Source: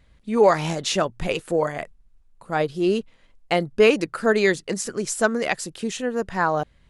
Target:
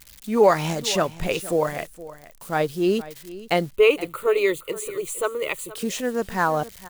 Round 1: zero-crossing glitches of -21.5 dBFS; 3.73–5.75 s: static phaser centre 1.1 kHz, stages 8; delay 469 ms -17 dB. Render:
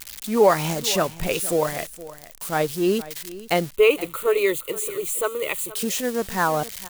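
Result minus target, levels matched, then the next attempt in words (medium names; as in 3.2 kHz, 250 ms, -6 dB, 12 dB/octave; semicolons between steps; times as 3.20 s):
zero-crossing glitches: distortion +10 dB
zero-crossing glitches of -31.5 dBFS; 3.73–5.75 s: static phaser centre 1.1 kHz, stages 8; delay 469 ms -17 dB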